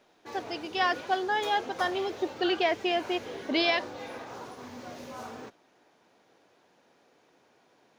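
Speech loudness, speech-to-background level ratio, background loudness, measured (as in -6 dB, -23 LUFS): -29.0 LUFS, 12.5 dB, -41.5 LUFS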